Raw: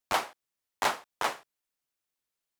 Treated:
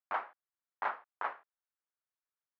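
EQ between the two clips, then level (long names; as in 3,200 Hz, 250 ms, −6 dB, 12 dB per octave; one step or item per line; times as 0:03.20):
low-pass filter 1,500 Hz 24 dB per octave
first difference
+11.5 dB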